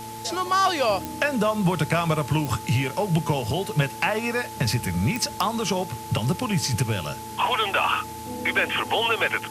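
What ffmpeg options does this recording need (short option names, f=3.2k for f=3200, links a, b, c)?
-af "adeclick=t=4,bandreject=f=112.6:t=h:w=4,bandreject=f=225.2:t=h:w=4,bandreject=f=337.8:t=h:w=4,bandreject=f=450.4:t=h:w=4,bandreject=f=870:w=30,afwtdn=0.0079"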